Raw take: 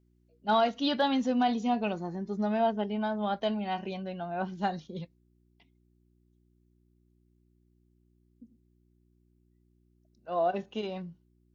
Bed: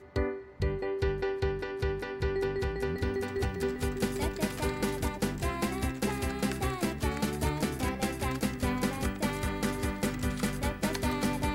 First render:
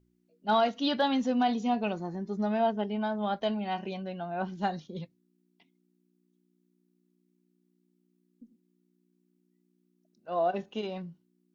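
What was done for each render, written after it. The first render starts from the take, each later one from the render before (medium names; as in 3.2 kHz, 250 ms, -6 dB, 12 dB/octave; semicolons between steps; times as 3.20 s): de-hum 60 Hz, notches 2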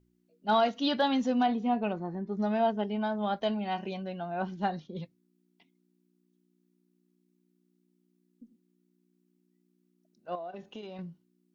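1.46–2.37 s: low-pass 2.4 kHz; 4.55–4.99 s: Bessel low-pass 3.9 kHz; 10.35–10.99 s: compression 4:1, threshold -40 dBFS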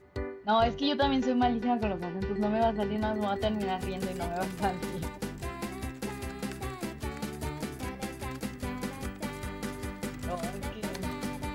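add bed -5.5 dB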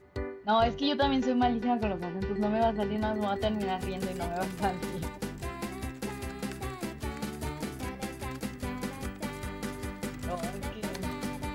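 7.03–7.83 s: doubling 45 ms -12 dB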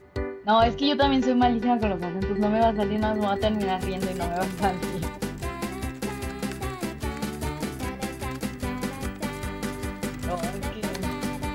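trim +5.5 dB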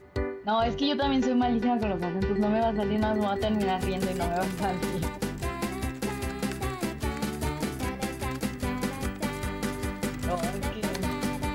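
peak limiter -17.5 dBFS, peak gain reduction 8 dB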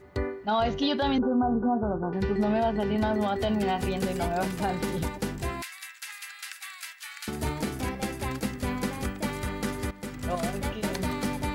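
1.18–2.13 s: steep low-pass 1.5 kHz 96 dB/octave; 5.62–7.28 s: high-pass 1.5 kHz 24 dB/octave; 9.91–10.39 s: fade in, from -12.5 dB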